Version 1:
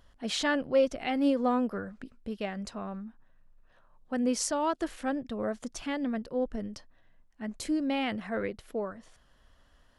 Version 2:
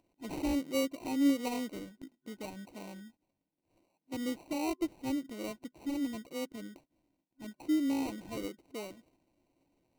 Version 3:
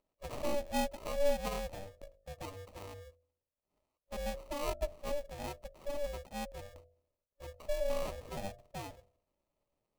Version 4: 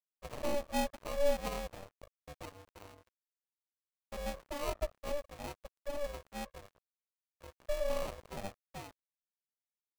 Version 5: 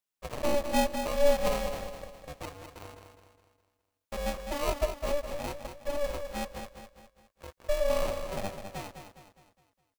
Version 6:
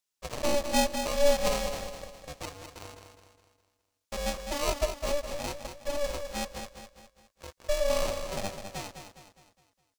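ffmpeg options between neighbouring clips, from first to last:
ffmpeg -i in.wav -af "afftfilt=real='re*between(b*sr/4096,140,4500)':imag='im*between(b*sr/4096,140,4500)':win_size=4096:overlap=0.75,acrusher=samples=26:mix=1:aa=0.000001,superequalizer=6b=2.82:10b=0.316,volume=-8.5dB" out.wav
ffmpeg -i in.wav -af "agate=range=-8dB:threshold=-58dB:ratio=16:detection=peak,bandreject=frequency=51.44:width_type=h:width=4,bandreject=frequency=102.88:width_type=h:width=4,bandreject=frequency=154.32:width_type=h:width=4,bandreject=frequency=205.76:width_type=h:width=4,bandreject=frequency=257.2:width_type=h:width=4,bandreject=frequency=308.64:width_type=h:width=4,bandreject=frequency=360.08:width_type=h:width=4,bandreject=frequency=411.52:width_type=h:width=4,aeval=exprs='val(0)*sin(2*PI*290*n/s)':channel_layout=same,volume=1.5dB" out.wav
ffmpeg -i in.wav -af "aeval=exprs='sgn(val(0))*max(abs(val(0))-0.00473,0)':channel_layout=same,volume=1dB" out.wav
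ffmpeg -i in.wav -af "aecho=1:1:206|412|618|824|1030:0.398|0.179|0.0806|0.0363|0.0163,volume=6.5dB" out.wav
ffmpeg -i in.wav -af "equalizer=frequency=5900:width_type=o:width=1.8:gain=7.5" out.wav

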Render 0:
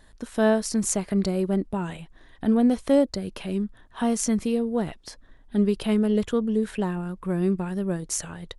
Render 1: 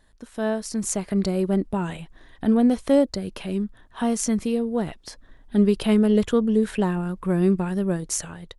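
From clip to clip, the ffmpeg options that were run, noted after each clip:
ffmpeg -i in.wav -af "dynaudnorm=framelen=340:gausssize=5:maxgain=11.5dB,volume=-6dB" out.wav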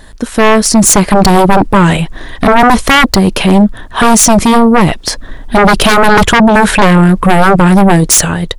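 ffmpeg -i in.wav -af "aeval=exprs='0.447*sin(PI/2*6.31*val(0)/0.447)':channel_layout=same,volume=5dB" out.wav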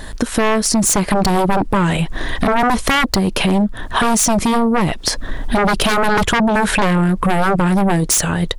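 ffmpeg -i in.wav -af "alimiter=limit=-7dB:level=0:latency=1:release=442,acompressor=threshold=-19dB:ratio=5,volume=5dB" out.wav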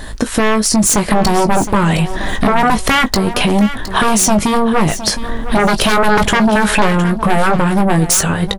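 ffmpeg -i in.wav -filter_complex "[0:a]asplit=2[link_01][link_02];[link_02]adelay=19,volume=-9.5dB[link_03];[link_01][link_03]amix=inputs=2:normalize=0,aecho=1:1:714|1428|2142:0.224|0.0493|0.0108,volume=2dB" out.wav

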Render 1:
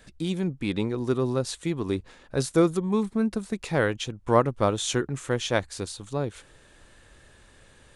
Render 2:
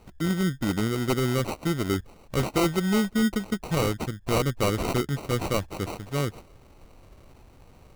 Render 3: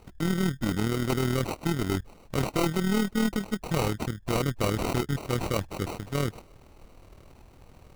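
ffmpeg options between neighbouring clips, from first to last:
ffmpeg -i in.wav -af "bass=frequency=250:gain=4,treble=frequency=4000:gain=4,acrusher=samples=26:mix=1:aa=0.000001,aeval=exprs='0.168*(abs(mod(val(0)/0.168+3,4)-2)-1)':channel_layout=same" out.wav
ffmpeg -i in.wav -af "aeval=exprs='(tanh(14.1*val(0)+0.5)-tanh(0.5))/14.1':channel_layout=same,tremolo=f=39:d=0.571,volume=4.5dB" out.wav

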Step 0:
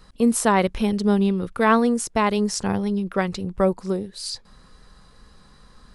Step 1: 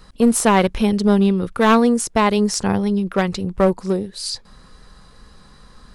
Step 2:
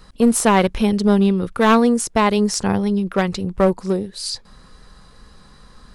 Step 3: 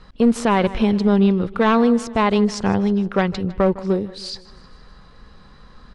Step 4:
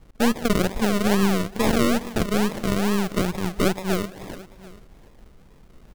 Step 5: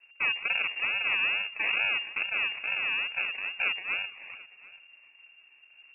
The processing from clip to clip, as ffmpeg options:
ffmpeg -i in.wav -af "aeval=exprs='clip(val(0),-1,0.126)':channel_layout=same,volume=4.5dB" out.wav
ffmpeg -i in.wav -af anull out.wav
ffmpeg -i in.wav -af "lowpass=4000,aecho=1:1:156|312|468|624:0.1|0.056|0.0314|0.0176,alimiter=level_in=5.5dB:limit=-1dB:release=50:level=0:latency=1,volume=-5dB" out.wav
ffmpeg -i in.wav -af "acrusher=samples=42:mix=1:aa=0.000001:lfo=1:lforange=25.2:lforate=2.3,aeval=exprs='0.501*(cos(1*acos(clip(val(0)/0.501,-1,1)))-cos(1*PI/2))+0.0562*(cos(8*acos(clip(val(0)/0.501,-1,1)))-cos(8*PI/2))':channel_layout=same,aecho=1:1:737:0.0891,volume=-4.5dB" out.wav
ffmpeg -i in.wav -af "lowpass=frequency=2400:width_type=q:width=0.5098,lowpass=frequency=2400:width_type=q:width=0.6013,lowpass=frequency=2400:width_type=q:width=0.9,lowpass=frequency=2400:width_type=q:width=2.563,afreqshift=-2800,volume=-8.5dB" out.wav

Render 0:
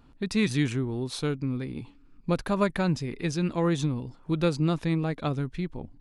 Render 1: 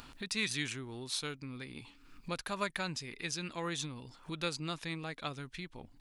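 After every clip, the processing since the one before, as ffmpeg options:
ffmpeg -i in.wav -af "tiltshelf=frequency=970:gain=-9,acompressor=mode=upward:threshold=-31dB:ratio=2.5,volume=-8dB" out.wav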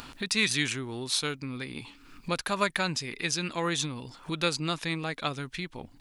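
ffmpeg -i in.wav -af "lowshelf=frequency=76:gain=-6,volume=8.5dB" out.wav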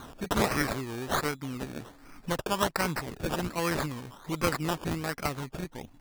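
ffmpeg -i in.wav -filter_complex "[0:a]acrossover=split=4800[link_01][link_02];[link_01]acompressor=mode=upward:threshold=-44dB:ratio=2.5[link_03];[link_03][link_02]amix=inputs=2:normalize=0,acrusher=samples=17:mix=1:aa=0.000001:lfo=1:lforange=10.2:lforate=1.3" out.wav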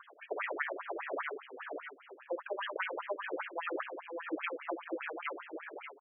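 ffmpeg -i in.wav -filter_complex "[0:a]asplit=2[link_01][link_02];[link_02]aecho=0:1:67|484|581|591:0.316|0.376|0.2|0.398[link_03];[link_01][link_03]amix=inputs=2:normalize=0,afftfilt=real='re*between(b*sr/1024,400*pow(2400/400,0.5+0.5*sin(2*PI*5*pts/sr))/1.41,400*pow(2400/400,0.5+0.5*sin(2*PI*5*pts/sr))*1.41)':imag='im*between(b*sr/1024,400*pow(2400/400,0.5+0.5*sin(2*PI*5*pts/sr))/1.41,400*pow(2400/400,0.5+0.5*sin(2*PI*5*pts/sr))*1.41)':win_size=1024:overlap=0.75,volume=-1.5dB" out.wav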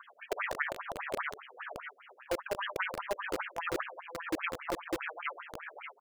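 ffmpeg -i in.wav -filter_complex "[0:a]aeval=exprs='val(0)+0.002*(sin(2*PI*50*n/s)+sin(2*PI*2*50*n/s)/2+sin(2*PI*3*50*n/s)/3+sin(2*PI*4*50*n/s)/4+sin(2*PI*5*50*n/s)/5)':channel_layout=same,acrossover=split=580[link_01][link_02];[link_01]acrusher=bits=5:mix=0:aa=0.000001[link_03];[link_03][link_02]amix=inputs=2:normalize=0,volume=2.5dB" out.wav

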